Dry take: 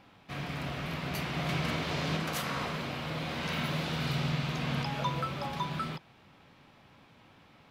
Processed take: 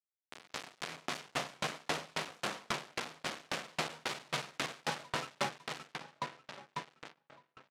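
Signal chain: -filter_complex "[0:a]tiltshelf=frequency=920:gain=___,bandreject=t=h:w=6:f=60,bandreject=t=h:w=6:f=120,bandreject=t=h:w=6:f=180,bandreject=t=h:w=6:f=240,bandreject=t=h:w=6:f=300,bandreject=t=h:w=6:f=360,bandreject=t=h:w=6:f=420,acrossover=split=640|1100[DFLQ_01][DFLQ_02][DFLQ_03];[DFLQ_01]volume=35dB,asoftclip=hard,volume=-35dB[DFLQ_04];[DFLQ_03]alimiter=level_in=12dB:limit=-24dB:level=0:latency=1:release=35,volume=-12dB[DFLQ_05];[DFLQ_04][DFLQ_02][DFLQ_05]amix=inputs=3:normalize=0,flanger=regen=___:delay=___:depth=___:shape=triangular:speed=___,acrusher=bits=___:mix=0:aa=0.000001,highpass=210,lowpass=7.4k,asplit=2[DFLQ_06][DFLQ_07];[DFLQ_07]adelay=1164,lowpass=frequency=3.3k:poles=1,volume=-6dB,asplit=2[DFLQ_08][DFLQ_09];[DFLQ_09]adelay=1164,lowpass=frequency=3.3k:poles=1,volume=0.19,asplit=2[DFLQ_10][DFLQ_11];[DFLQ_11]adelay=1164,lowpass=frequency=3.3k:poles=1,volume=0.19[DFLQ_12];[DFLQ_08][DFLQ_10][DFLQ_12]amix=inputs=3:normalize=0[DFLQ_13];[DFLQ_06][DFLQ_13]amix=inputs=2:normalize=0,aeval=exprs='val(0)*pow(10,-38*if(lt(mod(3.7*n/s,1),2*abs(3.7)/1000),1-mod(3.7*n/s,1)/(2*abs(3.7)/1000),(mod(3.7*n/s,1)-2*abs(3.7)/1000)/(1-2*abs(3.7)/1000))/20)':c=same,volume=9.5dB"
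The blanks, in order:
5.5, 79, 7.5, 7.6, 0.34, 5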